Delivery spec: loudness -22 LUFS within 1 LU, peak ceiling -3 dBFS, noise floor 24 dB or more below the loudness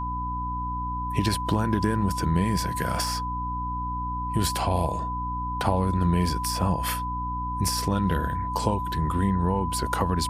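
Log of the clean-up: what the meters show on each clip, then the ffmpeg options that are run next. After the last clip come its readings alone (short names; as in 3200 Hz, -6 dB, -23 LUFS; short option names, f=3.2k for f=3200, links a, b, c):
hum 60 Hz; harmonics up to 300 Hz; hum level -31 dBFS; steady tone 1000 Hz; tone level -29 dBFS; loudness -26.5 LUFS; peak -7.5 dBFS; loudness target -22.0 LUFS
-> -af "bandreject=f=60:t=h:w=6,bandreject=f=120:t=h:w=6,bandreject=f=180:t=h:w=6,bandreject=f=240:t=h:w=6,bandreject=f=300:t=h:w=6"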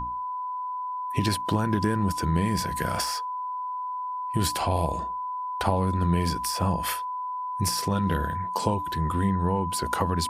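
hum none; steady tone 1000 Hz; tone level -29 dBFS
-> -af "bandreject=f=1k:w=30"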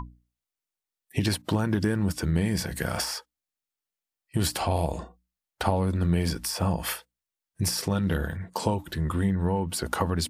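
steady tone none; loudness -28.0 LUFS; peak -8.0 dBFS; loudness target -22.0 LUFS
-> -af "volume=6dB,alimiter=limit=-3dB:level=0:latency=1"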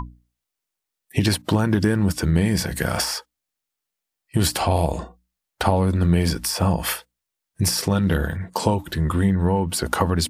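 loudness -22.0 LUFS; peak -3.0 dBFS; noise floor -84 dBFS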